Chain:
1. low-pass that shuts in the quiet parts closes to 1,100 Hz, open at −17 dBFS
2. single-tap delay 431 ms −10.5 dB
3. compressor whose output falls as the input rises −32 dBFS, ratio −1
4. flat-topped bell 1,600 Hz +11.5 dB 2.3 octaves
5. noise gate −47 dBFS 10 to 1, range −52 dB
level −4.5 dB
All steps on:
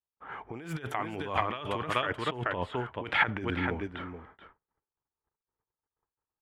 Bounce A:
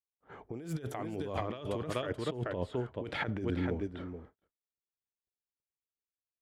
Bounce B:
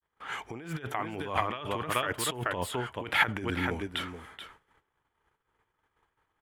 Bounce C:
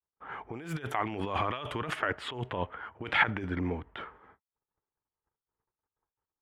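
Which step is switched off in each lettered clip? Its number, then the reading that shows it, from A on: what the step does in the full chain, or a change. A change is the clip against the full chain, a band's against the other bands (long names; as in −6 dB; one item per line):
4, 2 kHz band −10.5 dB
1, 4 kHz band +4.0 dB
2, change in momentary loudness spread +2 LU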